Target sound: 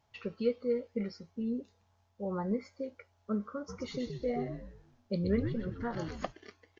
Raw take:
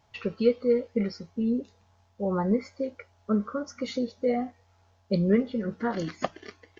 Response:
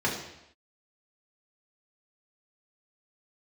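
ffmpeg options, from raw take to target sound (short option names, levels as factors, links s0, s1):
-filter_complex "[0:a]asplit=3[s0][s1][s2];[s0]afade=t=out:st=3.68:d=0.02[s3];[s1]asplit=6[s4][s5][s6][s7][s8][s9];[s5]adelay=124,afreqshift=-98,volume=0.531[s10];[s6]adelay=248,afreqshift=-196,volume=0.219[s11];[s7]adelay=372,afreqshift=-294,volume=0.0891[s12];[s8]adelay=496,afreqshift=-392,volume=0.0367[s13];[s9]adelay=620,afreqshift=-490,volume=0.015[s14];[s4][s10][s11][s12][s13][s14]amix=inputs=6:normalize=0,afade=t=in:st=3.68:d=0.02,afade=t=out:st=6.31:d=0.02[s15];[s2]afade=t=in:st=6.31:d=0.02[s16];[s3][s15][s16]amix=inputs=3:normalize=0,volume=0.398"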